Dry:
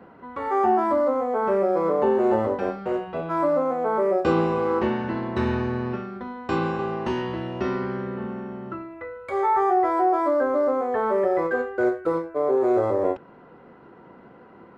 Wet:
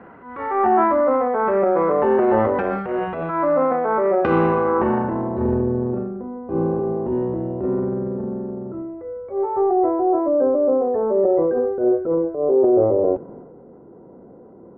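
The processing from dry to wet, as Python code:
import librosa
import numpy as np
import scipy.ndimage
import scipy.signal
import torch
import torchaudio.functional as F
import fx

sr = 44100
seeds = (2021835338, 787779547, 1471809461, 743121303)

y = fx.transient(x, sr, attack_db=-9, sustain_db=7)
y = fx.filter_sweep_lowpass(y, sr, from_hz=2000.0, to_hz=510.0, start_s=4.4, end_s=5.63, q=1.3)
y = y * 10.0 ** (3.5 / 20.0)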